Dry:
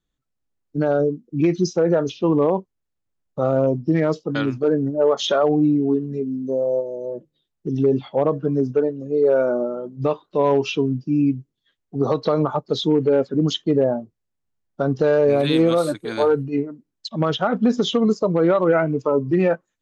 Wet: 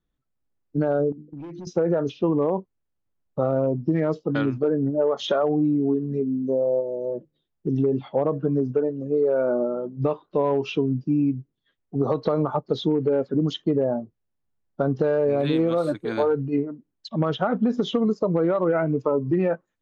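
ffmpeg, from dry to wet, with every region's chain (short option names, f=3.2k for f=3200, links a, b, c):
-filter_complex "[0:a]asettb=1/sr,asplit=3[a][b][c];[a]atrim=end=1.124[d];[b]atrim=start=1.12:end=1.67,asetpts=PTS-STARTPTS,afade=t=in:d=0.004:c=qsin,afade=t=out:st=0.546:d=0.004:c=qsin,asoftclip=type=hard:threshold=-16.5dB,bandreject=f=50:t=h:w=6,bandreject=f=100:t=h:w=6,bandreject=f=150:t=h:w=6,bandreject=f=200:t=h:w=6,bandreject=f=250:t=h:w=6,bandreject=f=300:t=h:w=6,bandreject=f=350:t=h:w=6,bandreject=f=400:t=h:w=6,bandreject=f=450:t=h:w=6,acompressor=threshold=-35dB:ratio=12:attack=3.2:release=140:knee=1:detection=peak[e];[c]atrim=start=1.666[f];[d][e]acrossfade=d=0.004:c1=hsin:c2=qsin[g];[g][f]acrossfade=d=0.004:c1=qsin:c2=hsin,lowpass=f=1.7k:p=1,acompressor=threshold=-19dB:ratio=6,volume=1dB"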